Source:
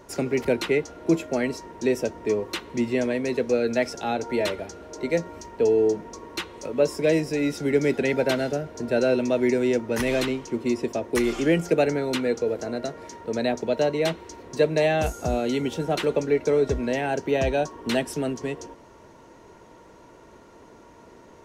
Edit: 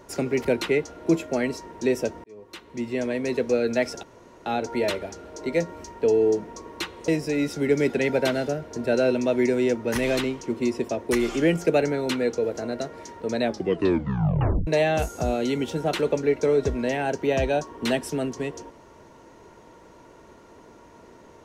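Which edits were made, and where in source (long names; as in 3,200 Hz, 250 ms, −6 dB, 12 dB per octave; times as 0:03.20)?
0:02.24–0:03.30: fade in
0:04.03: splice in room tone 0.43 s
0:06.65–0:07.12: remove
0:13.45: tape stop 1.26 s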